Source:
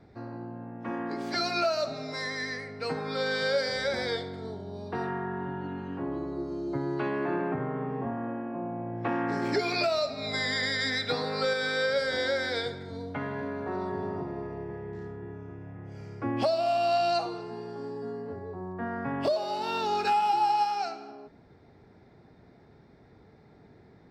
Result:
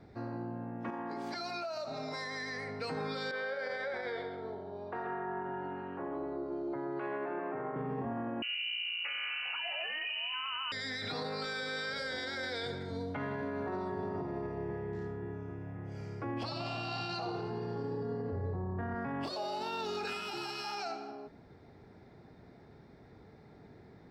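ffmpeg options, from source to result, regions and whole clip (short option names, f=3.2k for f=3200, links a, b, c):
-filter_complex "[0:a]asettb=1/sr,asplit=3[a][b][c];[a]atrim=end=0.904[d];[b]atrim=start=0.9:end=2.8,asetpts=PTS-STARTPTS,afade=t=in:d=0.004:c=qsin,afade=t=out:st=1.896:d=0.004:c=qsin,equalizer=f=890:t=o:w=0.62:g=8,acompressor=threshold=-35dB:ratio=16:attack=3.2:release=140:knee=1:detection=peak[e];[c]atrim=start=2.796[f];[d][e]acrossfade=d=0.004:c1=hsin:c2=qsin[g];[g][f]acrossfade=d=0.004:c1=qsin:c2=hsin,asettb=1/sr,asplit=3[h][i][j];[h]atrim=end=3.314[k];[i]atrim=start=3.31:end=7.76,asetpts=PTS-STARTPTS,afade=t=in:d=0.004:c=qsin,afade=t=out:st=4.446:d=0.004:c=qsin,acrossover=split=380 2600:gain=0.2 1 0.0891[l][m][n];[l][m][n]amix=inputs=3:normalize=0,acompressor=threshold=-34dB:ratio=2.5:attack=3.2:release=140:knee=1:detection=peak,aecho=1:1:130:0.335,atrim=end_sample=196245[o];[j]atrim=start=7.756[p];[k][o]acrossfade=d=0.004:c1=hsin:c2=qsin[q];[q][p]acrossfade=d=0.004:c1=qsin:c2=hsin,asettb=1/sr,asplit=3[r][s][t];[r]atrim=end=8.424[u];[s]atrim=start=8.42:end=10.72,asetpts=PTS-STARTPTS,afade=t=in:d=0.004:c=qsin,afade=t=out:st=2.296:d=0.004:c=qsin,equalizer=f=110:t=o:w=2.2:g=13.5,lowpass=f=2.6k:t=q:w=0.5098,lowpass=f=2.6k:t=q:w=0.6013,lowpass=f=2.6k:t=q:w=0.9,lowpass=f=2.6k:t=q:w=2.563,afreqshift=-3100[v];[t]atrim=start=10.716[w];[u][v]acrossfade=d=0.004:c1=hsin:c2=qsin[x];[x][w]acrossfade=d=0.004:c1=qsin:c2=hsin,asettb=1/sr,asplit=3[y][z][aa];[y]atrim=end=16.434[ab];[z]atrim=start=16.43:end=18.95,asetpts=PTS-STARTPTS,afade=t=in:d=0.004:c=qsin,afade=t=out:st=2.516:d=0.004:c=qsin,lowpass=5.1k,equalizer=f=92:t=o:w=1.2:g=12,asplit=6[ac][ad][ae][af][ag][ah];[ad]adelay=81,afreqshift=35,volume=-12dB[ai];[ae]adelay=162,afreqshift=70,volume=-18.4dB[aj];[af]adelay=243,afreqshift=105,volume=-24.8dB[ak];[ag]adelay=324,afreqshift=140,volume=-31.1dB[al];[ah]adelay=405,afreqshift=175,volume=-37.5dB[am];[ac][ai][aj][ak][al][am]amix=inputs=6:normalize=0,atrim=end_sample=111132[an];[aa]atrim=start=18.946[ao];[ab][an]acrossfade=d=0.004:c1=hsin:c2=qsin[ap];[ap][ao]acrossfade=d=0.004:c1=qsin:c2=hsin,afftfilt=real='re*lt(hypot(re,im),0.316)':imag='im*lt(hypot(re,im),0.316)':win_size=1024:overlap=0.75,alimiter=level_in=5.5dB:limit=-24dB:level=0:latency=1:release=37,volume=-5.5dB"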